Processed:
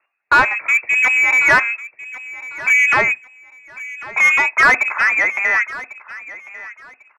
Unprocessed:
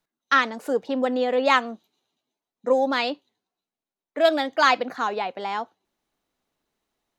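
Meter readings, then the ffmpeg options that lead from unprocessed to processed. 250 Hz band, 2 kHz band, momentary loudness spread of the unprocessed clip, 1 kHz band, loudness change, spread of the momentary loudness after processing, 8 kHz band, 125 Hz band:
-8.0 dB, +15.5 dB, 14 LU, +3.5 dB, +9.5 dB, 20 LU, +12.5 dB, n/a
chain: -filter_complex "[0:a]lowpass=f=2.4k:t=q:w=0.5098,lowpass=f=2.4k:t=q:w=0.6013,lowpass=f=2.4k:t=q:w=0.9,lowpass=f=2.4k:t=q:w=2.563,afreqshift=-2800,asplit=2[a][b];[b]highpass=f=720:p=1,volume=20dB,asoftclip=type=tanh:threshold=-5.5dB[c];[a][c]amix=inputs=2:normalize=0,lowpass=f=1.2k:p=1,volume=-6dB,aecho=1:1:1097|2194:0.133|0.032,volume=5.5dB"

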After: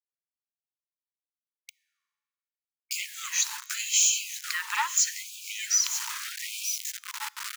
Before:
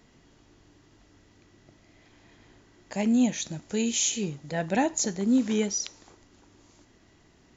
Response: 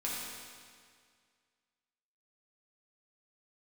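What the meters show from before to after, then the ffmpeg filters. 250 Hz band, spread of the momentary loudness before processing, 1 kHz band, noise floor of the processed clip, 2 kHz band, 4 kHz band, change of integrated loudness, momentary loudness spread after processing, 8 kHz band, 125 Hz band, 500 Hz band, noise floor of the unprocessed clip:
under -40 dB, 9 LU, 0.0 dB, under -85 dBFS, +6.0 dB, +6.0 dB, 0.0 dB, 13 LU, n/a, under -40 dB, under -40 dB, -60 dBFS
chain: -filter_complex "[0:a]highpass=f=76:w=0.5412,highpass=f=76:w=1.3066,bandreject=f=3.5k:w=6.5,aeval=exprs='0.211*sin(PI/2*2*val(0)/0.211)':c=same,bandreject=f=60:t=h:w=6,bandreject=f=120:t=h:w=6,bandreject=f=180:t=h:w=6,bandreject=f=240:t=h:w=6,bandreject=f=300:t=h:w=6,aecho=1:1:937|1874|2811|3748:0.158|0.0745|0.035|0.0165,acrusher=bits=5:mix=0:aa=0.000001,asplit=2[a][b];[1:a]atrim=start_sample=2205,asetrate=61740,aresample=44100[c];[b][c]afir=irnorm=-1:irlink=0,volume=-22dB[d];[a][d]amix=inputs=2:normalize=0,afreqshift=71,acompressor=threshold=-28dB:ratio=3,afftfilt=real='re*gte(b*sr/1024,830*pow(2300/830,0.5+0.5*sin(2*PI*0.79*pts/sr)))':imag='im*gte(b*sr/1024,830*pow(2300/830,0.5+0.5*sin(2*PI*0.79*pts/sr)))':win_size=1024:overlap=0.75,volume=6dB"

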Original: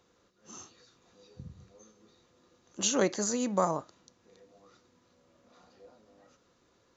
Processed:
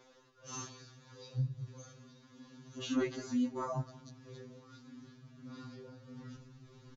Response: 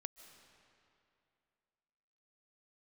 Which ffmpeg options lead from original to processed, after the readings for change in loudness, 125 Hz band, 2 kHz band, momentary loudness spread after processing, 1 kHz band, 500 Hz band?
-10.5 dB, +5.0 dB, -7.0 dB, 21 LU, -9.5 dB, -9.0 dB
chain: -filter_complex "[0:a]acrossover=split=4100[a][b];[b]acompressor=threshold=-49dB:ratio=4:attack=1:release=60[c];[a][c]amix=inputs=2:normalize=0,lowpass=f=6.4k:w=0.5412,lowpass=f=6.4k:w=1.3066,asubboost=boost=9.5:cutoff=190,acompressor=threshold=-40dB:ratio=3,flanger=delay=3.3:depth=7:regen=-39:speed=0.42:shape=triangular,tremolo=f=1.6:d=0.39,aecho=1:1:183|366|549:0.106|0.0371|0.013,afftfilt=real='re*2.45*eq(mod(b,6),0)':imag='im*2.45*eq(mod(b,6),0)':win_size=2048:overlap=0.75,volume=13.5dB"

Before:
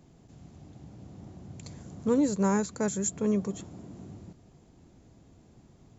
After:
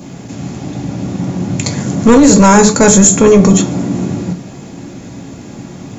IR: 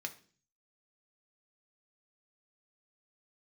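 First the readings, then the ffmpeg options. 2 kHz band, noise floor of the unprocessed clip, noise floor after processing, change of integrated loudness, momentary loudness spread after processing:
+24.5 dB, -58 dBFS, -31 dBFS, +19.0 dB, 18 LU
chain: -filter_complex "[1:a]atrim=start_sample=2205,atrim=end_sample=6174[a];[0:a][a]afir=irnorm=-1:irlink=0,apsyclip=32dB,adynamicequalizer=threshold=0.0398:dfrequency=1900:dqfactor=2.4:tfrequency=1900:tqfactor=2.4:attack=5:release=100:ratio=0.375:range=2:mode=cutabove:tftype=bell,volume=-1.5dB"

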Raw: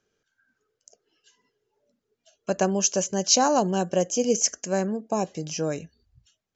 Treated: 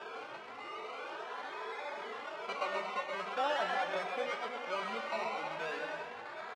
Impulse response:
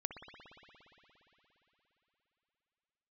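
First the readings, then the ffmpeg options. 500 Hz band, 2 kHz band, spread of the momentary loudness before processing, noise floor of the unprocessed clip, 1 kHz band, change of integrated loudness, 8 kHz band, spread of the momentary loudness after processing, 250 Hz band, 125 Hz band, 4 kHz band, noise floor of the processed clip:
-12.0 dB, +1.5 dB, 11 LU, -81 dBFS, -6.5 dB, -14.0 dB, n/a, 10 LU, -23.0 dB, under -25 dB, -12.0 dB, -47 dBFS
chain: -filter_complex "[0:a]aeval=exprs='val(0)+0.5*0.0447*sgn(val(0))':c=same,acrossover=split=2000[a][b];[b]acompressor=threshold=-38dB:ratio=6[c];[a][c]amix=inputs=2:normalize=0,acrusher=samples=21:mix=1:aa=0.000001:lfo=1:lforange=12.6:lforate=0.44,asoftclip=type=tanh:threshold=-23dB,highpass=760,lowpass=2.6k,asplit=2[d][e];[e]adelay=18,volume=-12dB[f];[d][f]amix=inputs=2:normalize=0,aecho=1:1:130|234|317.2|383.8|437:0.631|0.398|0.251|0.158|0.1,asplit=2[g][h];[1:a]atrim=start_sample=2205[i];[h][i]afir=irnorm=-1:irlink=0,volume=-3.5dB[j];[g][j]amix=inputs=2:normalize=0,asplit=2[k][l];[l]adelay=2.7,afreqshift=2.5[m];[k][m]amix=inputs=2:normalize=1,volume=-4.5dB"

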